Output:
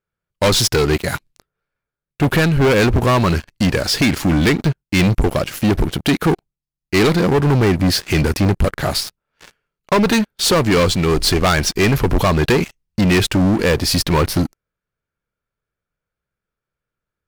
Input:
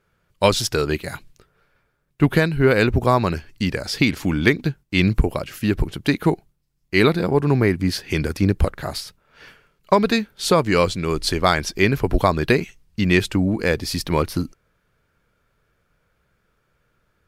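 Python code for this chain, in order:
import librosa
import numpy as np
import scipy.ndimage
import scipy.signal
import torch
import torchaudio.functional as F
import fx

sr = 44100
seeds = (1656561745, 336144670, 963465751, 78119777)

y = fx.leveller(x, sr, passes=5)
y = y * librosa.db_to_amplitude(-8.0)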